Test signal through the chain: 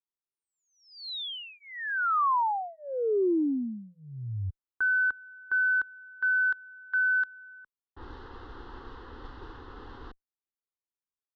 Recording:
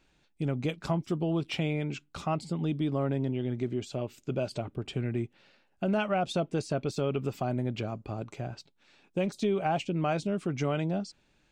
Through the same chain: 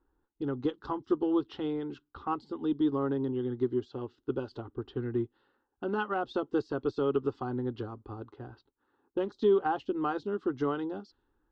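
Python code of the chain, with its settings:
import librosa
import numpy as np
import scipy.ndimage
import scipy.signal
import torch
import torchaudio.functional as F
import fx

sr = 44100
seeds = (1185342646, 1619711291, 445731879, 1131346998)

y = fx.cheby_harmonics(x, sr, harmonics=(3,), levels_db=(-29,), full_scale_db=-17.5)
y = scipy.signal.sosfilt(scipy.signal.butter(4, 3900.0, 'lowpass', fs=sr, output='sos'), y)
y = fx.env_lowpass(y, sr, base_hz=1200.0, full_db=-29.5)
y = fx.fixed_phaser(y, sr, hz=630.0, stages=6)
y = fx.upward_expand(y, sr, threshold_db=-44.0, expansion=1.5)
y = F.gain(torch.from_numpy(y), 7.0).numpy()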